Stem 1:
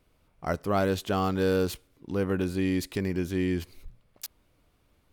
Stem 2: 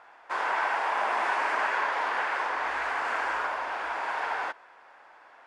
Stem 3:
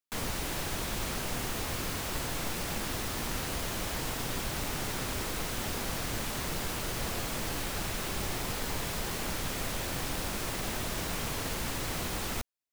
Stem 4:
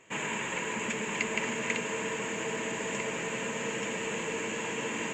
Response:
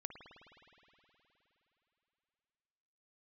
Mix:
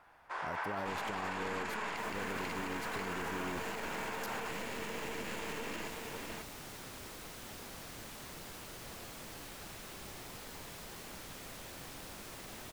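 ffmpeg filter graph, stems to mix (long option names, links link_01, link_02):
-filter_complex "[0:a]acompressor=threshold=-32dB:ratio=3,volume=-4dB[link_01];[1:a]volume=-12dB,asplit=2[link_02][link_03];[link_03]volume=-3.5dB[link_04];[2:a]adelay=1850,volume=-12.5dB[link_05];[3:a]lowpass=frequency=2500:poles=1,aeval=exprs='max(val(0),0)':channel_layout=same,adelay=750,volume=0dB,asplit=2[link_06][link_07];[link_07]volume=-5.5dB[link_08];[4:a]atrim=start_sample=2205[link_09];[link_04][link_09]afir=irnorm=-1:irlink=0[link_10];[link_08]aecho=0:1:540:1[link_11];[link_01][link_02][link_05][link_06][link_10][link_11]amix=inputs=6:normalize=0,lowshelf=frequency=99:gain=-7,alimiter=level_in=5dB:limit=-24dB:level=0:latency=1:release=65,volume=-5dB"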